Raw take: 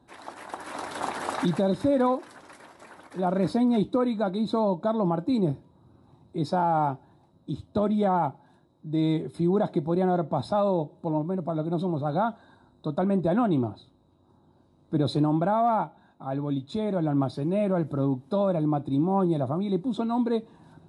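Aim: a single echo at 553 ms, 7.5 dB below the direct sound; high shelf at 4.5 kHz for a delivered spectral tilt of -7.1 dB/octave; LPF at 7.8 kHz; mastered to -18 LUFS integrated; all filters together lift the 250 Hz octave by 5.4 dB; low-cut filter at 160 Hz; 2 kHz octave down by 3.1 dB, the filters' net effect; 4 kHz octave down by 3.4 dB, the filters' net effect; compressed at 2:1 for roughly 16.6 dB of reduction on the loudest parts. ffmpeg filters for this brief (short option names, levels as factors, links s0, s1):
-af "highpass=160,lowpass=7800,equalizer=f=250:t=o:g=8,equalizer=f=2000:t=o:g=-5,equalizer=f=4000:t=o:g=-6.5,highshelf=f=4500:g=9,acompressor=threshold=0.00501:ratio=2,aecho=1:1:553:0.422,volume=10"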